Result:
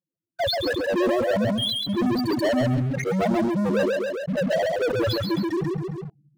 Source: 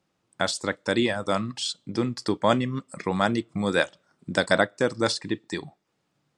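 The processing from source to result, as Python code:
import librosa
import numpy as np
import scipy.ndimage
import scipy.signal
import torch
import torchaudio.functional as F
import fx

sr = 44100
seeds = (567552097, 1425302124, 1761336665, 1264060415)

y = scipy.signal.sosfilt(scipy.signal.butter(2, 3800.0, 'lowpass', fs=sr, output='sos'), x)
y = fx.hum_notches(y, sr, base_hz=60, count=4)
y = fx.dereverb_blind(y, sr, rt60_s=1.7)
y = fx.spec_topn(y, sr, count=2)
y = fx.rider(y, sr, range_db=10, speed_s=2.0)
y = fx.leveller(y, sr, passes=5)
y = fx.echo_feedback(y, sr, ms=135, feedback_pct=18, wet_db=-3.5)
y = fx.sustainer(y, sr, db_per_s=24.0)
y = F.gain(torch.from_numpy(y), -2.5).numpy()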